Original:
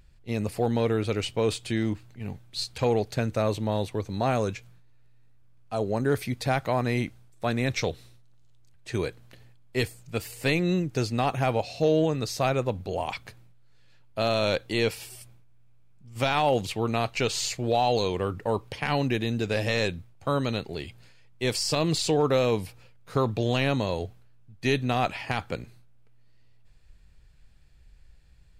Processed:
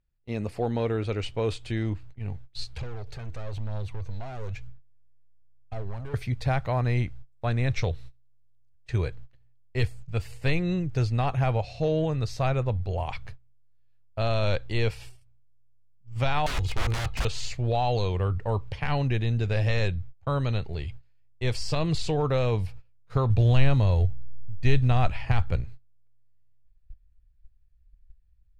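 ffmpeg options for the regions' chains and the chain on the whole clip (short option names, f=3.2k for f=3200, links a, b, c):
-filter_complex "[0:a]asettb=1/sr,asplit=3[a][b][c];[a]atrim=end=2.774[d];[b]atrim=start=2.77:end=6.14,asetpts=PTS-STARTPTS,afade=t=in:d=0.004:c=qsin,afade=t=out:st=3.366:d=0.004:c=qsin,acompressor=threshold=-33dB:ratio=2.5:attack=3.2:release=140:knee=1:detection=peak,asoftclip=type=hard:threshold=-35dB,aphaser=in_gain=1:out_gain=1:delay=3.1:decay=0.36:speed=1:type=triangular[e];[c]atrim=start=6.136[f];[d][e]acrossfade=d=0.004:c1=hsin:c2=qsin[g];[g][f]acrossfade=d=0.004:c1=qsin:c2=hsin,asettb=1/sr,asplit=3[h][i][j];[h]atrim=end=16.464[k];[i]atrim=start=16.46:end=17.25,asetpts=PTS-STARTPTS,afade=t=in:d=0.004:c=qsin,afade=t=out:st=0.786:d=0.004:c=qsin,aecho=1:1:2.4:0.71,atrim=end_sample=34839,aeval=exprs='val(0)+0.00316*(sin(2*PI*50*n/s)+sin(2*PI*2*50*n/s)/2+sin(2*PI*3*50*n/s)/3+sin(2*PI*4*50*n/s)/4+sin(2*PI*5*50*n/s)/5)':c=same,aeval=exprs='(mod(14.1*val(0)+1,2)-1)/14.1':c=same[l];[j]atrim=start=17.246[m];[k][l]acrossfade=d=0.004:c1=hsin:c2=qsin[n];[n][m]acrossfade=d=0.004:c1=qsin:c2=hsin,asettb=1/sr,asplit=3[o][p][q];[o]atrim=end=23.304[r];[p]atrim=start=23.3:end=25.61,asetpts=PTS-STARTPTS,afade=t=in:d=0.004:c=qsin,afade=t=out:st=2.306:d=0.004:c=qsin,acrusher=bits=7:mode=log:mix=0:aa=0.000001,lowshelf=f=100:g=10[s];[q]atrim=start=25.606[t];[r][s]acrossfade=d=0.004:c1=hsin:c2=qsin[u];[u][t]acrossfade=d=0.004:c1=qsin:c2=hsin,aemphasis=mode=reproduction:type=50fm,agate=range=-20dB:threshold=-46dB:ratio=16:detection=peak,asubboost=boost=9:cutoff=82,volume=-2dB"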